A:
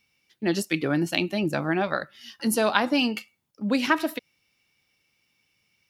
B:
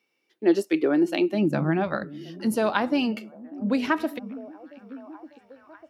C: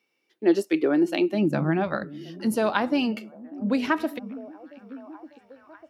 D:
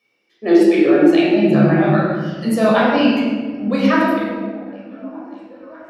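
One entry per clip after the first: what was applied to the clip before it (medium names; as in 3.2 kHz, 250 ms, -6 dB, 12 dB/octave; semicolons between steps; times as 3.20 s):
treble shelf 2.2 kHz -9.5 dB; repeats whose band climbs or falls 597 ms, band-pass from 200 Hz, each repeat 0.7 oct, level -12 dB; high-pass sweep 360 Hz -> 62 Hz, 1.23–2.03 s
no audible change
reverb removal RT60 1.4 s; reverberation RT60 1.5 s, pre-delay 14 ms, DRR -7 dB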